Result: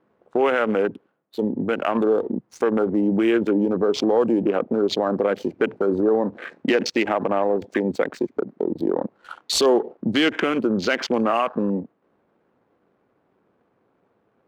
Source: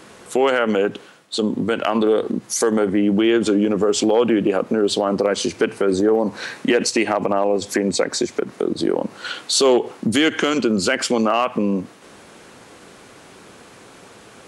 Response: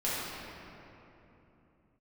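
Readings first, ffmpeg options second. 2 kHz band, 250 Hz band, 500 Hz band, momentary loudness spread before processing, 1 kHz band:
-3.0 dB, -2.5 dB, -2.5 dB, 8 LU, -2.5 dB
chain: -af "lowshelf=f=74:g=-9.5,adynamicsmooth=sensitivity=3:basefreq=920,afwtdn=0.0355,volume=-2dB"

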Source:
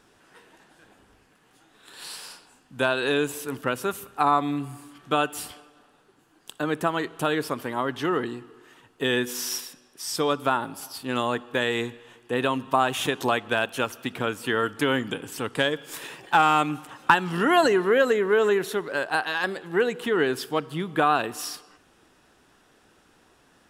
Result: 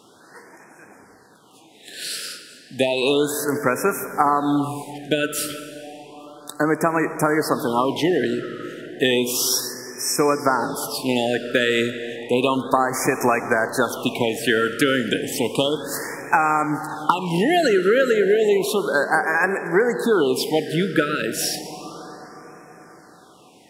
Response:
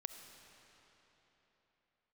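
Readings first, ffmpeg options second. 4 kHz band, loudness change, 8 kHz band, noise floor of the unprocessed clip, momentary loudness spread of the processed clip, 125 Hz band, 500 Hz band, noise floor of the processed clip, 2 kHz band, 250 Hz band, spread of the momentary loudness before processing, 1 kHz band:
+5.0 dB, +4.5 dB, +9.0 dB, -61 dBFS, 14 LU, +5.0 dB, +5.5 dB, -50 dBFS, +3.5 dB, +6.5 dB, 14 LU, +2.5 dB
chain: -filter_complex "[0:a]highpass=140,acompressor=threshold=-23dB:ratio=10,asplit=2[a][b];[1:a]atrim=start_sample=2205,asetrate=32634,aresample=44100[c];[b][c]afir=irnorm=-1:irlink=0,volume=4.5dB[d];[a][d]amix=inputs=2:normalize=0,afftfilt=real='re*(1-between(b*sr/1024,880*pow(3700/880,0.5+0.5*sin(2*PI*0.32*pts/sr))/1.41,880*pow(3700/880,0.5+0.5*sin(2*PI*0.32*pts/sr))*1.41))':imag='im*(1-between(b*sr/1024,880*pow(3700/880,0.5+0.5*sin(2*PI*0.32*pts/sr))/1.41,880*pow(3700/880,0.5+0.5*sin(2*PI*0.32*pts/sr))*1.41))':win_size=1024:overlap=0.75,volume=2.5dB"

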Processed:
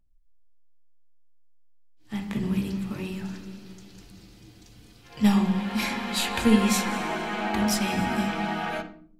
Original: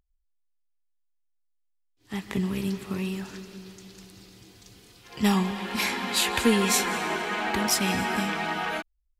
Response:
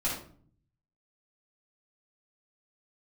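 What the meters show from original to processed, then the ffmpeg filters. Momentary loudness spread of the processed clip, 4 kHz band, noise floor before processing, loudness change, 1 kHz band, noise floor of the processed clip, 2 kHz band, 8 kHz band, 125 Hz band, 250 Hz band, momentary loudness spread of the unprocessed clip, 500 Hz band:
14 LU, -3.0 dB, -72 dBFS, 0.0 dB, -0.5 dB, -54 dBFS, -2.5 dB, -4.5 dB, +2.0 dB, +3.5 dB, 16 LU, -1.5 dB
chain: -filter_complex "[0:a]asplit=2[a][b];[1:a]atrim=start_sample=2205,lowpass=6.5k,lowshelf=f=470:g=10.5[c];[b][c]afir=irnorm=-1:irlink=0,volume=-12dB[d];[a][d]amix=inputs=2:normalize=0,volume=-4.5dB"

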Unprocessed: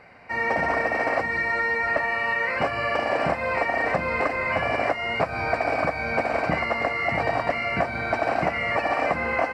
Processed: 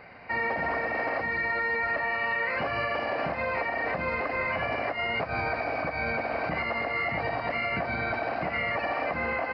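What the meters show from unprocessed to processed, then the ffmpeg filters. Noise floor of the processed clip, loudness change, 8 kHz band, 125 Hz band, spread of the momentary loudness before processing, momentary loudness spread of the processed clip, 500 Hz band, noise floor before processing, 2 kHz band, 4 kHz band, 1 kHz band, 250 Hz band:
-35 dBFS, -4.5 dB, n/a, -4.5 dB, 2 LU, 3 LU, -5.5 dB, -31 dBFS, -4.0 dB, -3.5 dB, -5.0 dB, -5.0 dB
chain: -af "alimiter=limit=-22.5dB:level=0:latency=1:release=90,aresample=11025,aresample=44100,volume=1.5dB"

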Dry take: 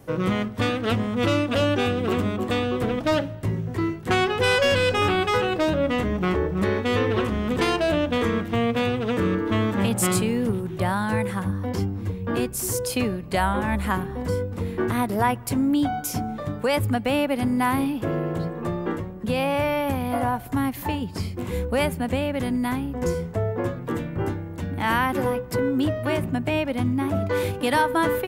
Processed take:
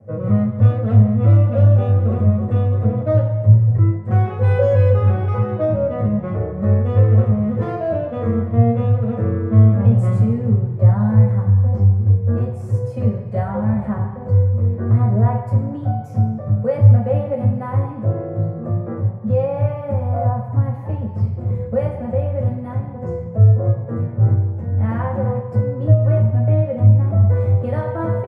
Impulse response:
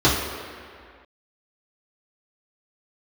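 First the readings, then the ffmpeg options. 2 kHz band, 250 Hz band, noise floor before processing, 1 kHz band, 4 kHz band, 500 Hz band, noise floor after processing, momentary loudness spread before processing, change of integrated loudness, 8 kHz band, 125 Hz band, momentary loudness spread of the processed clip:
under -10 dB, +1.5 dB, -35 dBFS, -3.5 dB, under -20 dB, +2.0 dB, -29 dBFS, 7 LU, +7.0 dB, under -25 dB, +15.0 dB, 9 LU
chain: -filter_complex "[0:a]firequalizer=gain_entry='entry(120,0);entry(240,-11);entry(500,-6);entry(2800,-24);entry(13000,-30)':delay=0.05:min_phase=1[a];[1:a]atrim=start_sample=2205,asetrate=74970,aresample=44100[b];[a][b]afir=irnorm=-1:irlink=0,volume=-13.5dB"

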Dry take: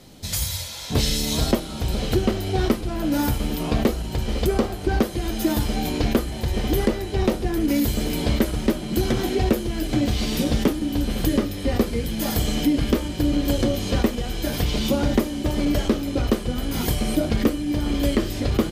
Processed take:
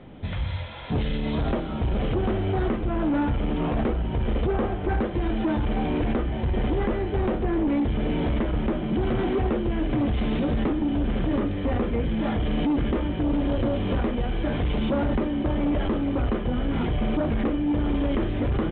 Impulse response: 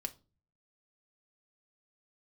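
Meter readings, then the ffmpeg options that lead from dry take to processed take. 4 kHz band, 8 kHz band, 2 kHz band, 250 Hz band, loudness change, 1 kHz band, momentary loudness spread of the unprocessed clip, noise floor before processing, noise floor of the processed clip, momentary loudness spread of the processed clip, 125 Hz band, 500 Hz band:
-11.0 dB, under -40 dB, -3.0 dB, -2.0 dB, -2.5 dB, -0.5 dB, 4 LU, -32 dBFS, -30 dBFS, 3 LU, -1.5 dB, -2.5 dB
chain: -af "alimiter=limit=-16.5dB:level=0:latency=1:release=21,lowpass=2.1k,aresample=8000,aeval=exprs='0.158*sin(PI/2*1.41*val(0)/0.158)':c=same,aresample=44100,volume=-3.5dB"

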